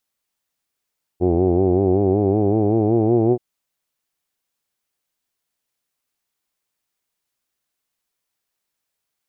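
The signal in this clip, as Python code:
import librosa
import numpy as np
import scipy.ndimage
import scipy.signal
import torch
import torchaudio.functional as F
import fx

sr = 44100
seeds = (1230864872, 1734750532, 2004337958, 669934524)

y = fx.formant_vowel(sr, seeds[0], length_s=2.18, hz=86.3, glide_st=5.5, vibrato_hz=5.3, vibrato_st=0.9, f1_hz=370.0, f2_hz=750.0, f3_hz=2400.0)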